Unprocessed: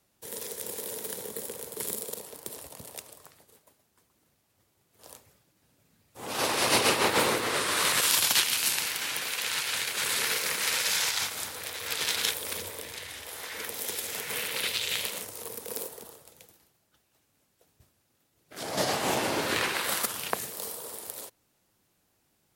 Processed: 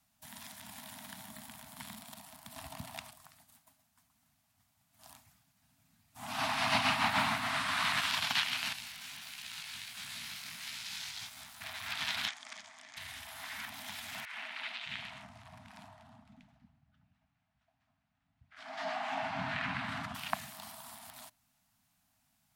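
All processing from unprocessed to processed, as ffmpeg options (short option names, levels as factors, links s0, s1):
-filter_complex "[0:a]asettb=1/sr,asplit=3[s0][s1][s2];[s0]atrim=end=2.564[s3];[s1]atrim=start=2.56:end=3.11,asetpts=PTS-STARTPTS,afade=t=in:d=0.004:c=qsin,afade=t=out:st=0.546:d=0.004:c=qsin,acontrast=82,acrusher=bits=7:mode=log:mix=0:aa=0.000001[s4];[s2]atrim=start=3.106[s5];[s3][s4]acrossfade=d=0.004:c1=hsin:c2=qsin[s6];[s6][s5]acrossfade=d=0.004:c1=qsin:c2=hsin,asettb=1/sr,asplit=3[s7][s8][s9];[s7]atrim=end=8.734[s10];[s8]atrim=start=8.73:end=11.61,asetpts=PTS-STARTPTS,afade=t=in:d=0.004:c=qsin,afade=t=out:st=2.876:d=0.004:c=qsin,acrossover=split=260|3000[s11][s12][s13];[s12]acompressor=threshold=0.00794:ratio=6:attack=3.2:release=140:knee=2.83:detection=peak[s14];[s11][s14][s13]amix=inputs=3:normalize=0,flanger=delay=15.5:depth=4.4:speed=1.5,aeval=exprs='sgn(val(0))*max(abs(val(0))-0.00398,0)':c=same[s15];[s9]atrim=start=11.606[s16];[s10][s15]acrossfade=d=0.004:c1=hsin:c2=qsin[s17];[s17][s16]acrossfade=d=0.004:c1=qsin:c2=hsin,asettb=1/sr,asplit=3[s18][s19][s20];[s18]atrim=end=12.284[s21];[s19]atrim=start=12.28:end=12.97,asetpts=PTS-STARTPTS,afade=t=in:d=0.004:c=qsin,afade=t=out:st=0.686:d=0.004:c=qsin,adynamicsmooth=sensitivity=7:basefreq=2300,highpass=460,equalizer=f=690:t=q:w=4:g=-4,equalizer=f=970:t=q:w=4:g=-8,equalizer=f=1500:t=q:w=4:g=-5,equalizer=f=2700:t=q:w=4:g=-7,equalizer=f=3900:t=q:w=4:g=-5,equalizer=f=6600:t=q:w=4:g=6,lowpass=f=8400:w=0.5412,lowpass=f=8400:w=1.3066[s22];[s20]atrim=start=12.966[s23];[s21][s22]acrossfade=d=0.004:c1=hsin:c2=qsin[s24];[s24][s23]acrossfade=d=0.004:c1=qsin:c2=hsin,asettb=1/sr,asplit=3[s25][s26][s27];[s25]atrim=end=14.254[s28];[s26]atrim=start=14.25:end=20.15,asetpts=PTS-STARTPTS,afade=t=in:d=0.004:c=qsin,afade=t=out:st=5.896:d=0.004:c=qsin,lowpass=2100,acrossover=split=280|1100[s29][s30][s31];[s30]adelay=70[s32];[s29]adelay=610[s33];[s33][s32][s31]amix=inputs=3:normalize=0,atrim=end_sample=260190[s34];[s27]atrim=start=20.146[s35];[s28][s34]acrossfade=d=0.004:c1=hsin:c2=qsin[s36];[s36][s35]acrossfade=d=0.004:c1=qsin:c2=hsin,afftfilt=real='re*(1-between(b*sr/4096,280,620))':imag='im*(1-between(b*sr/4096,280,620))':win_size=4096:overlap=0.75,acrossover=split=4200[s37][s38];[s38]acompressor=threshold=0.00501:ratio=4:attack=1:release=60[s39];[s37][s39]amix=inputs=2:normalize=0,volume=0.708"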